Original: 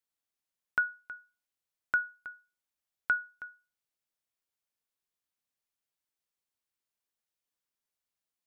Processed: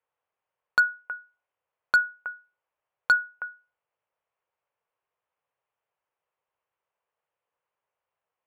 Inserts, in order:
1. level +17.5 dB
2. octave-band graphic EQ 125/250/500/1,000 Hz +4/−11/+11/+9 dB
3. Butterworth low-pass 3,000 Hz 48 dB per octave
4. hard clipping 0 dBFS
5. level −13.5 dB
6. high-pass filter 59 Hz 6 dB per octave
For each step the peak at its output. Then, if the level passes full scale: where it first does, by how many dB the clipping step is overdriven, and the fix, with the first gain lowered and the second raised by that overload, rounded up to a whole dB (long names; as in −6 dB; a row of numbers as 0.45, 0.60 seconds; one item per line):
−0.5, +7.0, +7.0, 0.0, −13.5, −13.0 dBFS
step 2, 7.0 dB
step 1 +10.5 dB, step 5 −6.5 dB